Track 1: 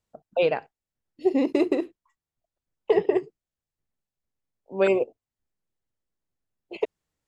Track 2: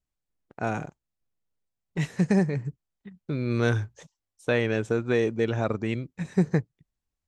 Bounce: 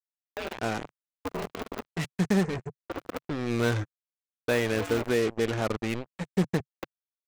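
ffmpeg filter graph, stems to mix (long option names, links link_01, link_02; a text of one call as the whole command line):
ffmpeg -i stem1.wav -i stem2.wav -filter_complex "[0:a]alimiter=limit=-19.5dB:level=0:latency=1:release=63,aeval=exprs='val(0)*sgn(sin(2*PI*100*n/s))':channel_layout=same,volume=-7.5dB,asplit=2[link_01][link_02];[link_02]volume=-9.5dB[link_03];[1:a]volume=-1.5dB[link_04];[link_03]aecho=0:1:77|154|231:1|0.16|0.0256[link_05];[link_01][link_04][link_05]amix=inputs=3:normalize=0,acrusher=bits=4:mix=0:aa=0.5,equalizer=frequency=140:width_type=o:width=0.32:gain=-8.5" out.wav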